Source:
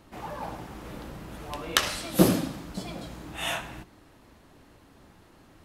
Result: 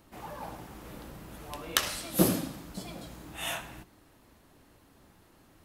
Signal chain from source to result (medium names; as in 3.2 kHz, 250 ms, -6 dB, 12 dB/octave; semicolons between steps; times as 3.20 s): treble shelf 10 kHz +11.5 dB; trim -5 dB